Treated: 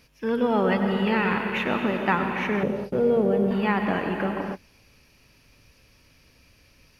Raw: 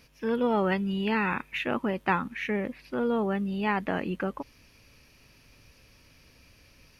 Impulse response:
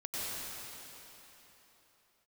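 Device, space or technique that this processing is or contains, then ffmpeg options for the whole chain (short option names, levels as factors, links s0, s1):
keyed gated reverb: -filter_complex "[0:a]asplit=3[s0][s1][s2];[1:a]atrim=start_sample=2205[s3];[s1][s3]afir=irnorm=-1:irlink=0[s4];[s2]apad=whole_len=308495[s5];[s4][s5]sidechaingate=range=0.0224:threshold=0.00398:ratio=16:detection=peak,volume=0.596[s6];[s0][s6]amix=inputs=2:normalize=0,asettb=1/sr,asplit=3[s7][s8][s9];[s7]atrim=end=2.634[s10];[s8]atrim=start=2.63:end=3.51,asetpts=PTS-STARTPTS,afade=t=in:d=0.004:c=qsin,afade=t=out:st=0.876:d=0.004:c=qsin,equalizer=f=125:t=o:w=1:g=10,equalizer=f=250:t=o:w=1:g=-4,equalizer=f=500:t=o:w=1:g=8,equalizer=f=1000:t=o:w=1:g=-8,equalizer=f=2000:t=o:w=1:g=-10,equalizer=f=4000:t=o:w=1:g=-3[s11];[s9]atrim=start=3.506[s12];[s10][s11]acrossfade=d=0.004:c1=hsin:c2=qsin[s13];[s13][s12]acrossfade=d=0.004:c1=qsin:c2=hsin"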